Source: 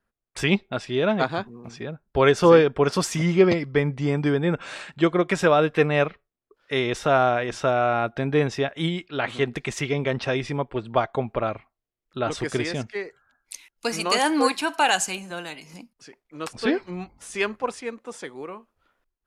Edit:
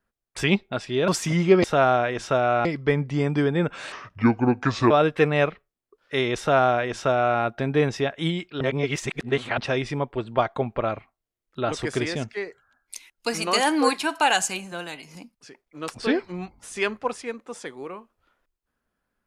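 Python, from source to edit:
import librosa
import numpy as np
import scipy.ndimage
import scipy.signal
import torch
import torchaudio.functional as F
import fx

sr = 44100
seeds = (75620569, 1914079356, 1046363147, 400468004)

y = fx.edit(x, sr, fx.cut(start_s=1.08, length_s=1.89),
    fx.speed_span(start_s=4.8, length_s=0.69, speed=0.7),
    fx.duplicate(start_s=6.97, length_s=1.01, to_s=3.53),
    fx.reverse_span(start_s=9.19, length_s=0.97), tone=tone)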